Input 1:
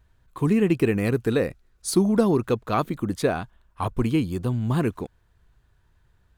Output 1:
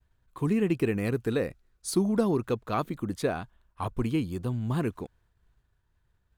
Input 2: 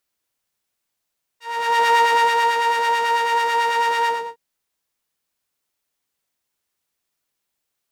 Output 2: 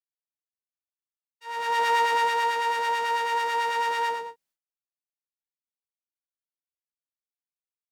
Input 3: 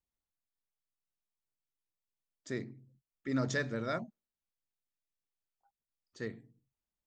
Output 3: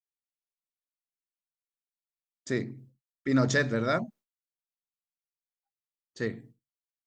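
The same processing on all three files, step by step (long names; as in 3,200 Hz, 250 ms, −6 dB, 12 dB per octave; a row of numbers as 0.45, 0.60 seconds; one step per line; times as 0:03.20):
downward expander −56 dBFS
normalise the peak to −12 dBFS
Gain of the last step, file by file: −5.5, −6.5, +8.0 decibels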